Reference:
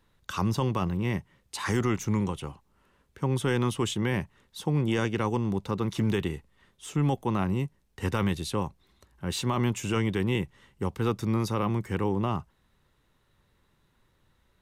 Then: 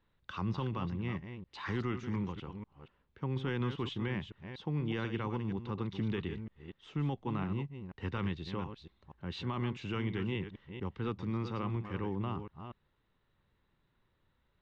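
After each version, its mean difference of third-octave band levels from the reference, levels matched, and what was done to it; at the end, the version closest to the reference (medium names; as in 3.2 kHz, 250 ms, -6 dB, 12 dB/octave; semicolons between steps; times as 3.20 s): 5.5 dB: chunks repeated in reverse 240 ms, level -9 dB; dynamic bell 620 Hz, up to -5 dB, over -41 dBFS, Q 1.4; low-pass 4 kHz 24 dB/octave; trim -8 dB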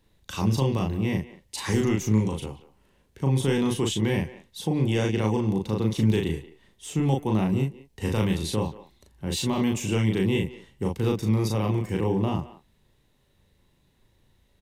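3.5 dB: peaking EQ 1.3 kHz -11 dB 0.81 oct; doubling 37 ms -2.5 dB; speakerphone echo 180 ms, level -16 dB; trim +2 dB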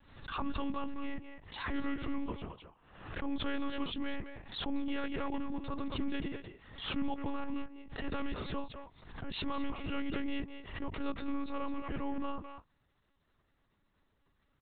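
10.5 dB: speakerphone echo 210 ms, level -6 dB; monotone LPC vocoder at 8 kHz 280 Hz; swell ahead of each attack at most 78 dB/s; trim -8 dB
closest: second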